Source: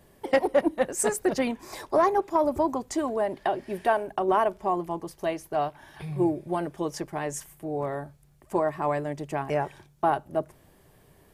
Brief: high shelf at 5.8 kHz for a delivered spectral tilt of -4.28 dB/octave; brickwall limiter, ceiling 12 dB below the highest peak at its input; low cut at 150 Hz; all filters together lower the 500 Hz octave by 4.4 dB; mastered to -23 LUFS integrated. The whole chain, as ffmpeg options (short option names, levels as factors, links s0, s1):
-af "highpass=150,equalizer=f=500:t=o:g=-6,highshelf=f=5800:g=4,volume=3.55,alimiter=limit=0.282:level=0:latency=1"